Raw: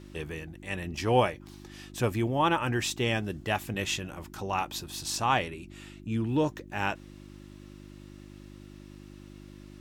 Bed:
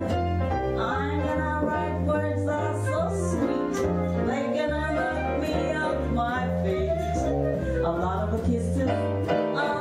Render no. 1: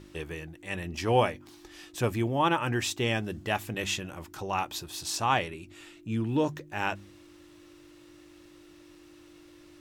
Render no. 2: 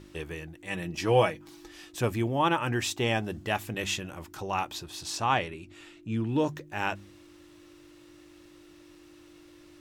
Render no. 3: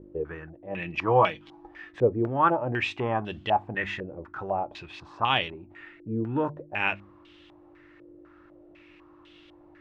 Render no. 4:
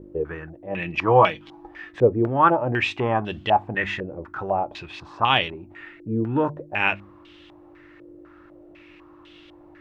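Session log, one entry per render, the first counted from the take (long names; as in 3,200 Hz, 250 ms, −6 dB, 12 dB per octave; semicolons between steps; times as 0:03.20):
hum removal 50 Hz, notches 5
0:00.67–0:01.71: comb filter 6.2 ms, depth 55%; 0:02.95–0:03.38: parametric band 800 Hz +6 dB; 0:04.73–0:06.36: high-shelf EQ 9,400 Hz −9.5 dB
tuned comb filter 65 Hz, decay 0.17 s, harmonics all, mix 30%; low-pass on a step sequencer 4 Hz 480–3,200 Hz
level +5 dB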